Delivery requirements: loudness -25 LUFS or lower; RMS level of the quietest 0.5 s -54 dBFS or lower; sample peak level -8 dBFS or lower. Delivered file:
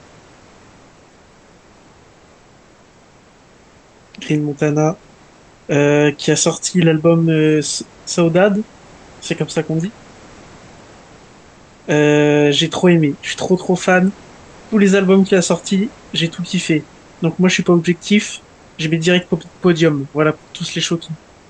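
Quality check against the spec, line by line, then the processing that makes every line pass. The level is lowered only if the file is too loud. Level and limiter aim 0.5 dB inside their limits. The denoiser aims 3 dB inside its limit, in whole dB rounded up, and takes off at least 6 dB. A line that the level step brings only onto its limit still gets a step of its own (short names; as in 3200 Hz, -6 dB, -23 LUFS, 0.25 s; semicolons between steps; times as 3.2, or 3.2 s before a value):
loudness -15.5 LUFS: fail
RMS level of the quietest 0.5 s -47 dBFS: fail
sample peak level -1.5 dBFS: fail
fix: gain -10 dB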